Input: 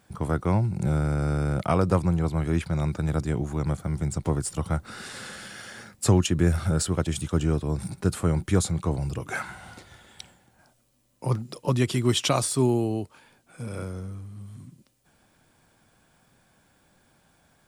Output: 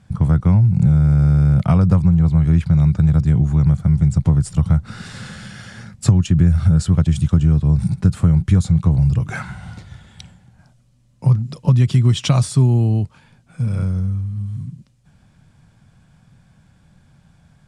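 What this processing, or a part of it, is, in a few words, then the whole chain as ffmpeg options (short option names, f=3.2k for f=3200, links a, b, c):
jukebox: -af "lowpass=7.8k,lowshelf=f=230:t=q:w=1.5:g=12,acompressor=threshold=-12dB:ratio=6,volume=2.5dB"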